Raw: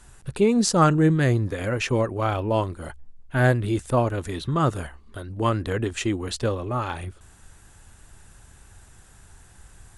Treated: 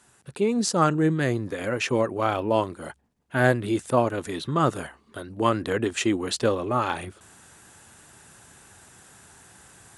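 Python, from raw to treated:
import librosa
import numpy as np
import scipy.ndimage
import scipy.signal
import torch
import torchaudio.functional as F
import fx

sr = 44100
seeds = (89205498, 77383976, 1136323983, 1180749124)

y = scipy.signal.sosfilt(scipy.signal.butter(2, 170.0, 'highpass', fs=sr, output='sos'), x)
y = fx.rider(y, sr, range_db=4, speed_s=2.0)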